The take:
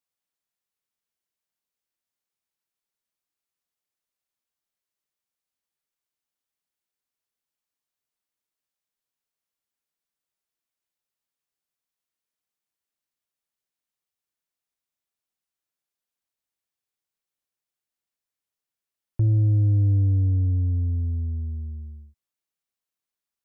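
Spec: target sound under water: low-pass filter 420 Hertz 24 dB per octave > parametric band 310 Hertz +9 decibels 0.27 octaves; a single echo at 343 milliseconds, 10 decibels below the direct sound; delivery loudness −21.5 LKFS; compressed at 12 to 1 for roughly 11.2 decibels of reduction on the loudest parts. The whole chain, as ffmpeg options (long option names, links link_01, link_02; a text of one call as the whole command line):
ffmpeg -i in.wav -af "acompressor=threshold=-29dB:ratio=12,lowpass=frequency=420:width=0.5412,lowpass=frequency=420:width=1.3066,equalizer=frequency=310:width_type=o:width=0.27:gain=9,aecho=1:1:343:0.316,volume=10.5dB" out.wav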